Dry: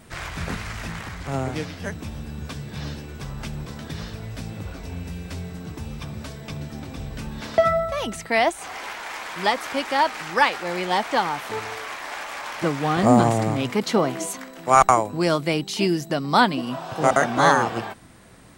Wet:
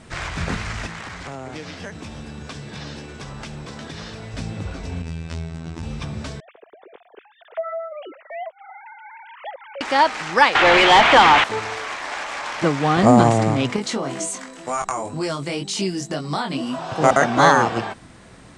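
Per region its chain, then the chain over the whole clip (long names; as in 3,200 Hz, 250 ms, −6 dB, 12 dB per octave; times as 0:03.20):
0:00.86–0:04.34: low-shelf EQ 150 Hz −10.5 dB + downward compressor, threshold −33 dBFS
0:05.02–0:05.83: high-shelf EQ 8,900 Hz −4 dB + phases set to zero 81.6 Hz
0:06.40–0:09.81: three sine waves on the formant tracks + parametric band 450 Hz +9 dB 1.2 octaves + downward compressor 2.5 to 1, threshold −39 dBFS
0:10.55–0:11.44: low-pass with resonance 3,300 Hz, resonance Q 2.5 + mid-hump overdrive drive 26 dB, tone 1,900 Hz, clips at −7 dBFS + mains-hum notches 60/120/180/240 Hz
0:13.76–0:16.79: parametric band 8,700 Hz +9.5 dB 0.96 octaves + downward compressor 5 to 1, threshold −21 dBFS + chorus effect 2 Hz, delay 19.5 ms, depth 2.9 ms
whole clip: low-pass filter 8,500 Hz 24 dB per octave; boost into a limiter +5 dB; level −1 dB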